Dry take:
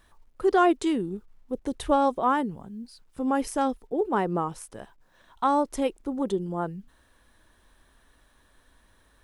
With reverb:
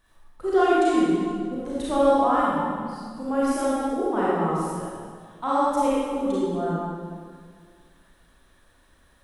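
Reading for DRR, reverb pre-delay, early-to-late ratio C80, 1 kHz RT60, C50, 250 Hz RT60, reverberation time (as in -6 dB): -9.0 dB, 31 ms, -2.0 dB, 1.9 s, -5.0 dB, 2.0 s, 1.9 s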